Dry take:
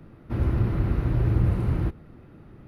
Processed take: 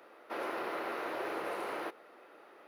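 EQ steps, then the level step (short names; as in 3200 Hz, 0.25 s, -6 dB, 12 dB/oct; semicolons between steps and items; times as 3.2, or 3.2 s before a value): HPF 490 Hz 24 dB/oct; +3.5 dB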